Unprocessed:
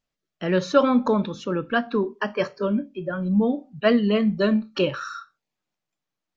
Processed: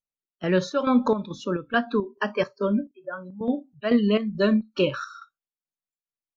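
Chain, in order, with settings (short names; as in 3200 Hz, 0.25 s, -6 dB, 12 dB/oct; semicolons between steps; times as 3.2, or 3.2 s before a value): spectral noise reduction 18 dB; chopper 2.3 Hz, depth 60%, duty 60%; 2.91–3.41 band-pass 1000 Hz, Q 1.1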